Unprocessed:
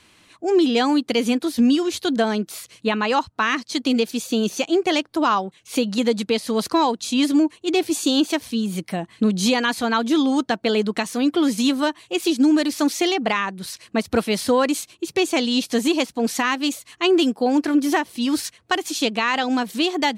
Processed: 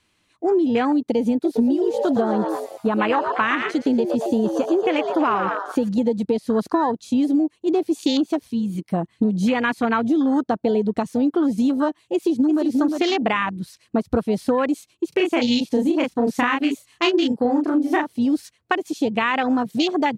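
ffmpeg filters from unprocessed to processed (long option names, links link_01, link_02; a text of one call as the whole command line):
ffmpeg -i in.wav -filter_complex "[0:a]asettb=1/sr,asplit=3[link_01][link_02][link_03];[link_01]atrim=end=1.334[link_04];[link_02]atrim=start=1.33:end=5.89,asetpts=PTS-STARTPTS,afade=type=in:duration=0.004:curve=qsin,afade=type=out:start_time=4.556:duration=0.004:curve=qsin,asplit=9[link_05][link_06][link_07][link_08][link_09][link_10][link_11][link_12][link_13];[link_06]adelay=115,afreqshift=110,volume=-7dB[link_14];[link_07]adelay=230,afreqshift=220,volume=-11.6dB[link_15];[link_08]adelay=345,afreqshift=330,volume=-16.2dB[link_16];[link_09]adelay=460,afreqshift=440,volume=-20.7dB[link_17];[link_10]adelay=575,afreqshift=550,volume=-25.3dB[link_18];[link_11]adelay=690,afreqshift=660,volume=-29.9dB[link_19];[link_12]adelay=805,afreqshift=770,volume=-34.5dB[link_20];[link_13]adelay=920,afreqshift=880,volume=-39.1dB[link_21];[link_05][link_14][link_15][link_16][link_17][link_18][link_19][link_20][link_21]amix=inputs=9:normalize=0,atrim=end_sample=201096[link_22];[link_03]atrim=start=5.886[link_23];[link_04][link_22]acrossfade=duration=0.004:curve1=hsin:curve2=qsin[link_24];[link_24][link_23]acrossfade=duration=0.004:curve1=qsin:curve2=hsin,asettb=1/sr,asplit=3[link_25][link_26][link_27];[link_25]atrim=end=8.474[link_28];[link_26]atrim=start=8.47:end=8.89,asetpts=PTS-STARTPTS,afade=type=in:duration=0.004:curve=qsin,afade=type=out:start_time=0.416:duration=0.004:curve=qsin,lowshelf=frequency=490:gain=-5.5[link_29];[link_27]atrim=start=8.886[link_30];[link_28][link_29]acrossfade=duration=0.004:curve1=hsin:curve2=qsin[link_31];[link_31][link_30]acrossfade=duration=0.004:curve1=qsin:curve2=hsin,asplit=2[link_32][link_33];[link_33]afade=type=in:start_time=12.13:duration=0.01,afade=type=out:start_time=12.66:duration=0.01,aecho=0:1:350|700:0.530884|0.0530884[link_34];[link_32][link_34]amix=inputs=2:normalize=0,asettb=1/sr,asplit=3[link_35][link_36][link_37];[link_35]atrim=end=15.094[link_38];[link_36]atrim=start=15.09:end=18.13,asetpts=PTS-STARTPTS,afade=type=in:duration=0.004:curve=qsin,afade=type=out:start_time=3.036:duration=0.004:curve=qsin,asplit=2[link_39][link_40];[link_40]adelay=33,volume=-2dB[link_41];[link_39][link_41]amix=inputs=2:normalize=0,atrim=end_sample=134064[link_42];[link_37]atrim=start=18.126[link_43];[link_38][link_42]acrossfade=duration=0.004:curve1=hsin:curve2=qsin[link_44];[link_44][link_43]acrossfade=duration=0.004:curve1=qsin:curve2=hsin,afwtdn=0.0562,lowshelf=frequency=92:gain=6,acompressor=threshold=-20dB:ratio=6,volume=4dB" out.wav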